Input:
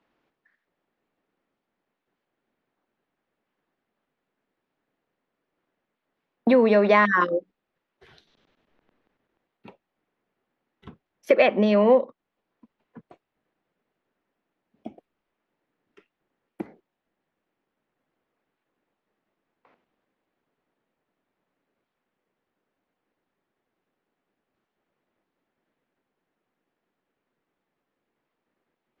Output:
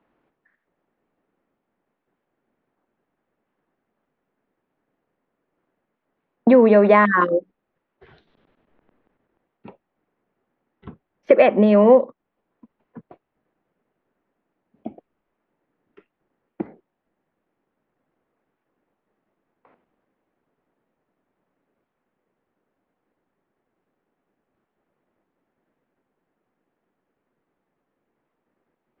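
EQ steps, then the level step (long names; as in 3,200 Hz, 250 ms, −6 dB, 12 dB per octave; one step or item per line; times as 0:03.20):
high-frequency loss of the air 240 metres
high-shelf EQ 2,600 Hz −8 dB
+6.0 dB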